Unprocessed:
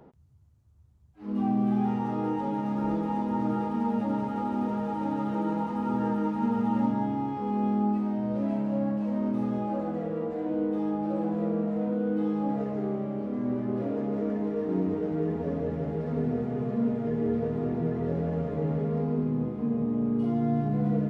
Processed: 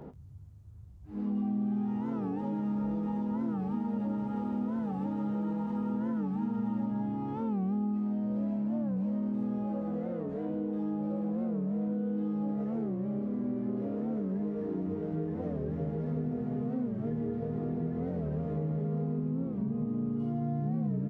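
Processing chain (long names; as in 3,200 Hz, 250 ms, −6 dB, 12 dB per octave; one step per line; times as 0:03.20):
double-tracking delay 20 ms −9.5 dB
backwards echo 111 ms −10.5 dB
downward compressor 4 to 1, threshold −41 dBFS, peak gain reduction 17.5 dB
low-shelf EQ 420 Hz +7.5 dB
wow of a warped record 45 rpm, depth 160 cents
level +2.5 dB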